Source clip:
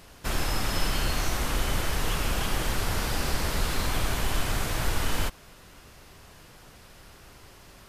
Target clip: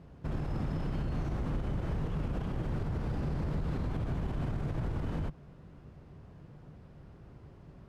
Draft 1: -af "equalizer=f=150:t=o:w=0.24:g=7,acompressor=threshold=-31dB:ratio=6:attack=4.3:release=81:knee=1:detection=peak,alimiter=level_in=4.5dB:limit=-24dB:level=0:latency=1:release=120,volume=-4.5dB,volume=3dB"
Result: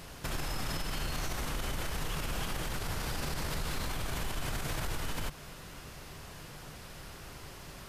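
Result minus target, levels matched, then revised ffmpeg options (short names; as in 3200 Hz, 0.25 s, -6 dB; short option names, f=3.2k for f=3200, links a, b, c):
125 Hz band -3.5 dB
-af "bandpass=f=130:t=q:w=0.54:csg=0,equalizer=f=150:t=o:w=0.24:g=7,acompressor=threshold=-31dB:ratio=6:attack=4.3:release=81:knee=1:detection=peak,alimiter=level_in=4.5dB:limit=-24dB:level=0:latency=1:release=120,volume=-4.5dB,volume=3dB"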